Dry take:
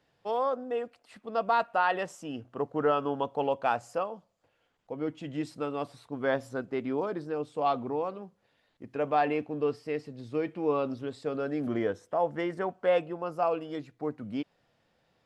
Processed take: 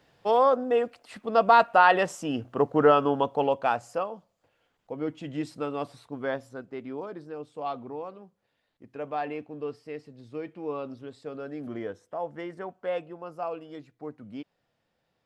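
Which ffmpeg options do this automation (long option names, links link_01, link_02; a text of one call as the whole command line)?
ffmpeg -i in.wav -af "volume=8dB,afade=type=out:start_time=2.7:duration=1.06:silence=0.473151,afade=type=out:start_time=5.98:duration=0.49:silence=0.446684" out.wav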